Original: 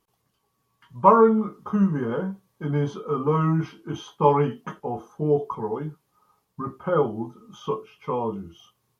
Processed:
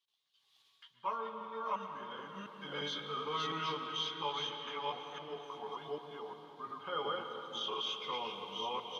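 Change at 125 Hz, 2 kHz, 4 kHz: −27.0, −4.5, +10.0 decibels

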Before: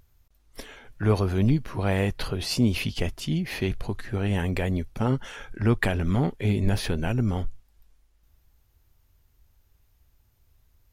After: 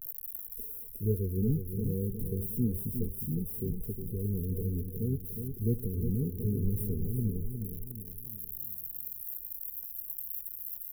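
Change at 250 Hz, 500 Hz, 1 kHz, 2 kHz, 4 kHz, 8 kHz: −7.0 dB, −8.5 dB, below −40 dB, below −40 dB, below −40 dB, −5.0 dB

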